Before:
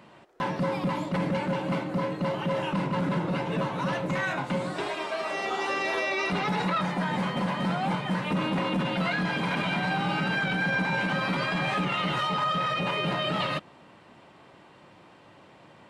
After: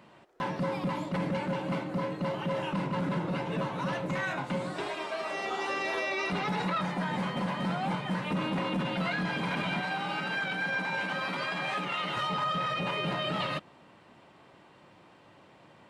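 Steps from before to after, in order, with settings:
0:09.81–0:12.17: high-pass filter 390 Hz 6 dB per octave
level −3.5 dB

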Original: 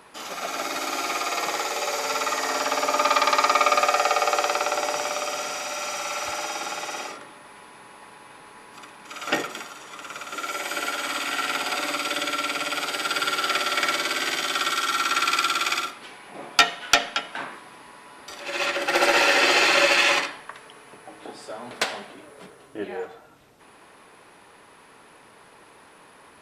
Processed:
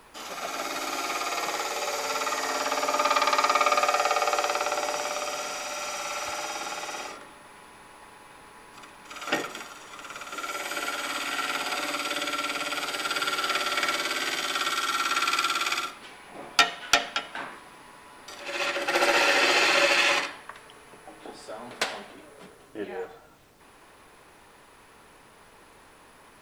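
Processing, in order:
background noise pink −59 dBFS
level −3 dB

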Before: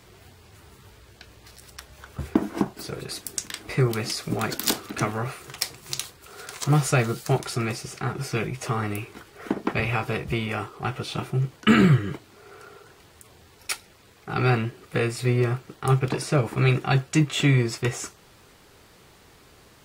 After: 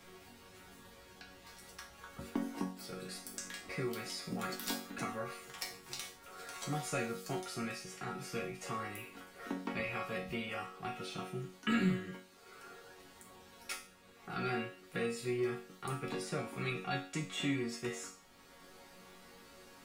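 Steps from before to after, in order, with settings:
resonators tuned to a chord F#3 major, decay 0.39 s
multiband upward and downward compressor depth 40%
level +6 dB

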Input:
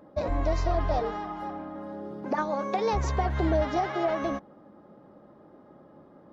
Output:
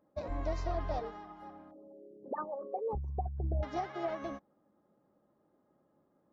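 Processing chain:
0:01.71–0:03.63: spectral envelope exaggerated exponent 3
expander for the loud parts 1.5 to 1, over −46 dBFS
level −7.5 dB

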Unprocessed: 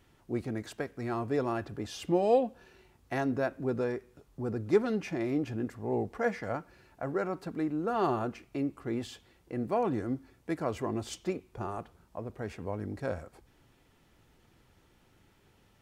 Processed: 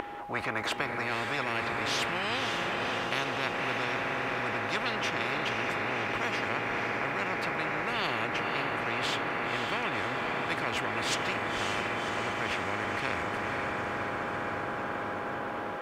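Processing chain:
steady tone 820 Hz −34 dBFS
three-way crossover with the lows and the highs turned down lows −21 dB, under 330 Hz, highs −21 dB, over 2,600 Hz
feedback delay with all-pass diffusion 546 ms, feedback 70%, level −7 dB
every bin compressed towards the loudest bin 10 to 1

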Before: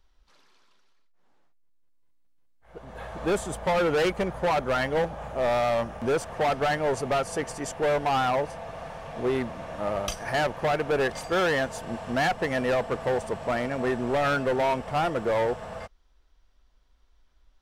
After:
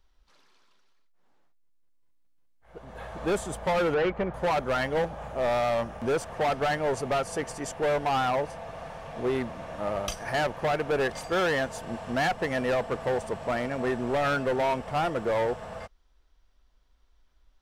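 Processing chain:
0:03.94–0:04.34: low-pass filter 2,400 Hz 12 dB per octave
level −1.5 dB

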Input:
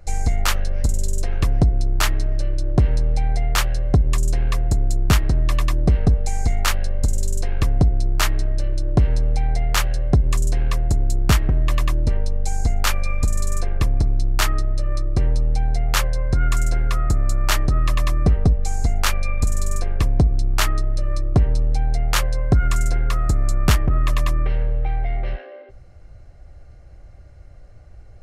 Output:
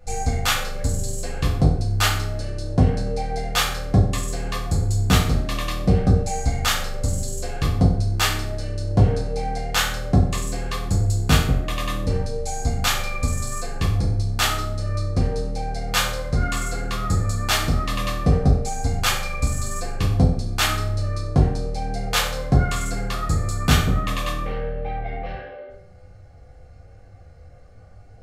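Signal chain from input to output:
dynamic equaliser 3,500 Hz, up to +5 dB, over −43 dBFS, Q 2
flanger 1 Hz, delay 9.7 ms, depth 4.8 ms, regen +36%
convolution reverb RT60 0.65 s, pre-delay 3 ms, DRR −4 dB

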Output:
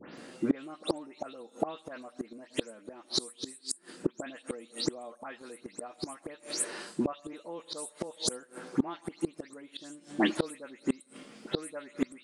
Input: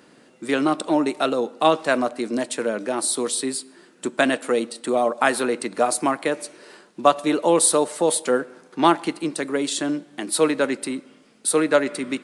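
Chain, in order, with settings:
every frequency bin delayed by itself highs late, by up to 172 ms
gate with flip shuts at −19 dBFS, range −29 dB
level +5 dB

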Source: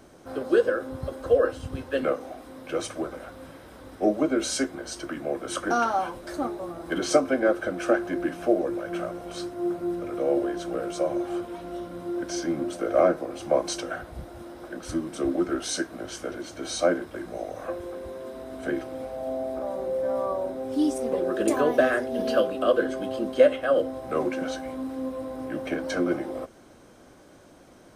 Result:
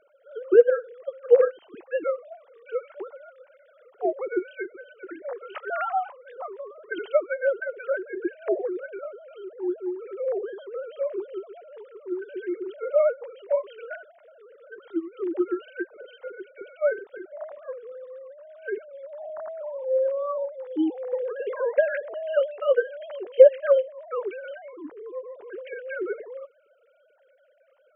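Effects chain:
three sine waves on the formant tracks
0:17.53–0:19.59: low shelf with overshoot 390 Hz +6.5 dB, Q 1.5

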